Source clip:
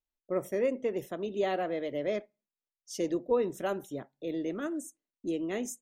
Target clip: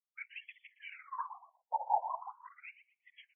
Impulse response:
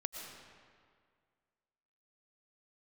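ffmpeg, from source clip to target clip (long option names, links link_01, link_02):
-filter_complex "[0:a]asetrate=76440,aresample=44100,asubboost=boost=11.5:cutoff=160,asplit=3[link_01][link_02][link_03];[link_01]bandpass=frequency=300:width_type=q:width=8,volume=0dB[link_04];[link_02]bandpass=frequency=870:width_type=q:width=8,volume=-6dB[link_05];[link_03]bandpass=frequency=2240:width_type=q:width=8,volume=-9dB[link_06];[link_04][link_05][link_06]amix=inputs=3:normalize=0,equalizer=frequency=410:width=1.5:gain=8,asplit=2[link_07][link_08];[link_08]adelay=118,lowpass=frequency=3900:poles=1,volume=-14.5dB,asplit=2[link_09][link_10];[link_10]adelay=118,lowpass=frequency=3900:poles=1,volume=0.28,asplit=2[link_11][link_12];[link_12]adelay=118,lowpass=frequency=3900:poles=1,volume=0.28[link_13];[link_07][link_09][link_11][link_13]amix=inputs=4:normalize=0,asoftclip=type=tanh:threshold=-35.5dB,afftfilt=real='hypot(re,im)*cos(2*PI*random(0))':imag='hypot(re,im)*sin(2*PI*random(1))':win_size=512:overlap=0.75,afftfilt=real='re*between(b*sr/1024,670*pow(2500/670,0.5+0.5*sin(2*PI*0.41*pts/sr))/1.41,670*pow(2500/670,0.5+0.5*sin(2*PI*0.41*pts/sr))*1.41)':imag='im*between(b*sr/1024,670*pow(2500/670,0.5+0.5*sin(2*PI*0.41*pts/sr))/1.41,670*pow(2500/670,0.5+0.5*sin(2*PI*0.41*pts/sr))*1.41)':win_size=1024:overlap=0.75,volume=17.5dB"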